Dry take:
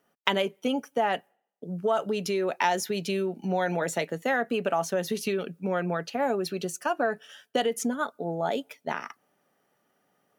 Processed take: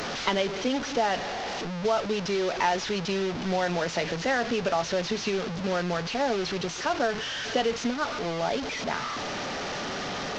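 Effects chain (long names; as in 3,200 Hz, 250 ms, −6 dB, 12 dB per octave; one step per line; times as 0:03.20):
linear delta modulator 32 kbit/s, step −26.5 dBFS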